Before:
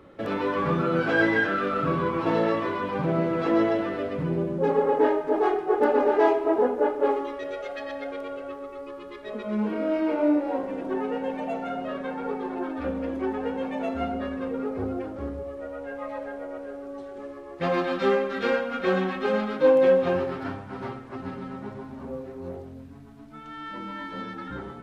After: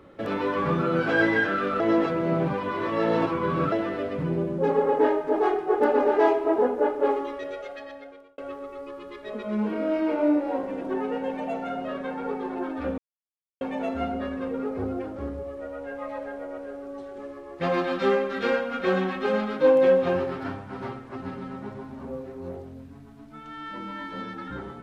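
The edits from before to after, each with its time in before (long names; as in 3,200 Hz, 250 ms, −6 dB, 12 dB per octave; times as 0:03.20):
0:01.80–0:03.72: reverse
0:07.37–0:08.38: fade out
0:12.98–0:13.61: silence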